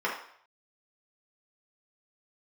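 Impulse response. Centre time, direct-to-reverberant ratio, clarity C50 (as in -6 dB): 33 ms, -6.0 dB, 5.0 dB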